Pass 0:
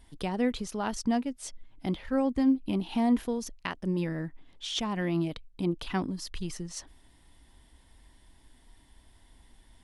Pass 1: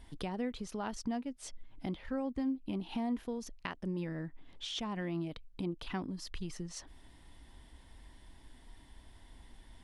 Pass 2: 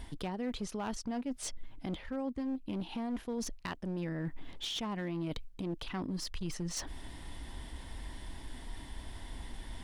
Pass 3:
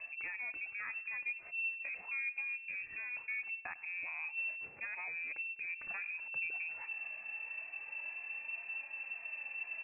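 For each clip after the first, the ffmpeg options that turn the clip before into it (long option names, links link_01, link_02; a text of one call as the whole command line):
ffmpeg -i in.wav -af "acompressor=threshold=-45dB:ratio=2,highshelf=frequency=7100:gain=-8,volume=2.5dB" out.wav
ffmpeg -i in.wav -af "areverse,acompressor=threshold=-46dB:ratio=5,areverse,aeval=exprs='clip(val(0),-1,0.00501)':channel_layout=same,volume=11.5dB" out.wav
ffmpeg -i in.wav -af "flanger=delay=1.9:depth=1.9:regen=45:speed=0.28:shape=triangular,aecho=1:1:100|200|300:0.106|0.0466|0.0205,lowpass=frequency=2300:width_type=q:width=0.5098,lowpass=frequency=2300:width_type=q:width=0.6013,lowpass=frequency=2300:width_type=q:width=0.9,lowpass=frequency=2300:width_type=q:width=2.563,afreqshift=-2700" out.wav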